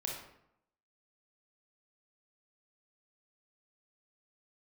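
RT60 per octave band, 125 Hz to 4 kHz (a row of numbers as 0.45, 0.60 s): 0.85, 0.85, 0.75, 0.75, 0.65, 0.50 s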